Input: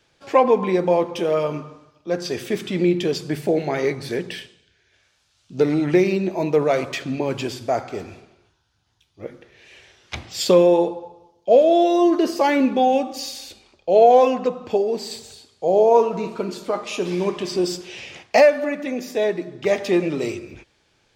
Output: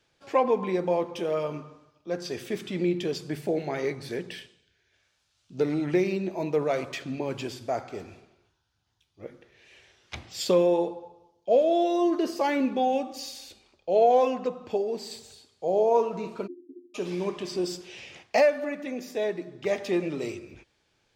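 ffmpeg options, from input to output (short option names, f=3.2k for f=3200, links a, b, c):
-filter_complex "[0:a]asplit=3[a][b][c];[a]afade=t=out:st=16.46:d=0.02[d];[b]asuperpass=centerf=310:order=12:qfactor=2.7,afade=t=in:st=16.46:d=0.02,afade=t=out:st=16.94:d=0.02[e];[c]afade=t=in:st=16.94:d=0.02[f];[d][e][f]amix=inputs=3:normalize=0,volume=-7.5dB"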